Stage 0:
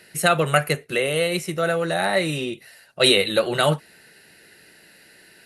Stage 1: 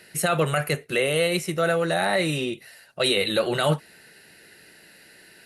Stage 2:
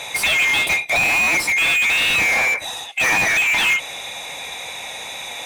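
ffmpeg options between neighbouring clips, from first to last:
-af "alimiter=limit=-12.5dB:level=0:latency=1:release=13"
-filter_complex "[0:a]afftfilt=real='real(if(lt(b,920),b+92*(1-2*mod(floor(b/92),2)),b),0)':imag='imag(if(lt(b,920),b+92*(1-2*mod(floor(b/92),2)),b),0)':win_size=2048:overlap=0.75,asplit=2[a][b];[b]highpass=f=720:p=1,volume=31dB,asoftclip=type=tanh:threshold=-9.5dB[c];[a][c]amix=inputs=2:normalize=0,lowpass=f=3k:p=1,volume=-6dB"

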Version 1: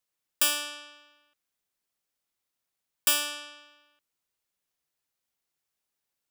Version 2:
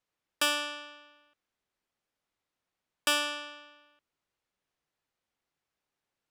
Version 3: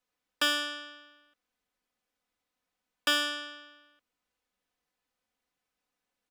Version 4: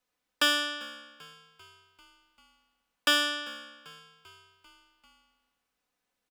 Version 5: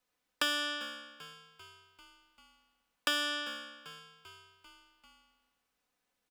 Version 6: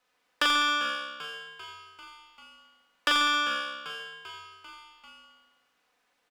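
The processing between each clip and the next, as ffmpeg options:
-af "aemphasis=mode=reproduction:type=75fm,volume=4dB"
-filter_complex "[0:a]aecho=1:1:4:0.57,acrossover=split=500|5400[a][b][c];[c]asoftclip=type=hard:threshold=-38.5dB[d];[a][b][d]amix=inputs=3:normalize=0"
-filter_complex "[0:a]asplit=6[a][b][c][d][e][f];[b]adelay=393,afreqshift=-67,volume=-22dB[g];[c]adelay=786,afreqshift=-134,volume=-26.2dB[h];[d]adelay=1179,afreqshift=-201,volume=-30.3dB[i];[e]adelay=1572,afreqshift=-268,volume=-34.5dB[j];[f]adelay=1965,afreqshift=-335,volume=-38.6dB[k];[a][g][h][i][j][k]amix=inputs=6:normalize=0,volume=2.5dB"
-af "acompressor=threshold=-30dB:ratio=3"
-filter_complex "[0:a]aecho=1:1:40|86|138.9|199.7|269.7:0.631|0.398|0.251|0.158|0.1,asplit=2[a][b];[b]highpass=f=720:p=1,volume=14dB,asoftclip=type=tanh:threshold=-15.5dB[c];[a][c]amix=inputs=2:normalize=0,lowpass=f=2.5k:p=1,volume=-6dB,volume=3dB"

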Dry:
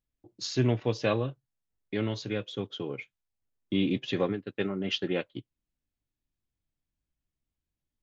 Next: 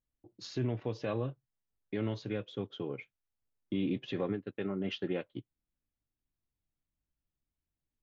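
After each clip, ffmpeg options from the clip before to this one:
-af "alimiter=limit=-21dB:level=0:latency=1:release=72,lowpass=f=1.9k:p=1,volume=-2.5dB"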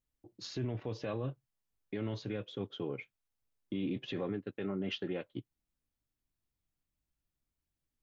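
-af "alimiter=level_in=5dB:limit=-24dB:level=0:latency=1:release=21,volume=-5dB,volume=1dB"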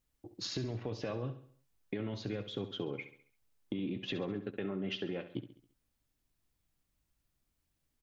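-filter_complex "[0:a]acompressor=threshold=-41dB:ratio=6,asplit=2[a][b];[b]aecho=0:1:68|136|204|272|340:0.251|0.113|0.0509|0.0229|0.0103[c];[a][c]amix=inputs=2:normalize=0,volume=6.5dB"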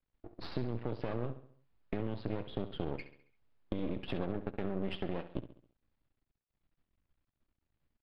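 -af "aeval=exprs='max(val(0),0)':c=same,aresample=11025,aresample=44100,adynamicsmooth=sensitivity=2.5:basefreq=3k,volume=4.5dB"

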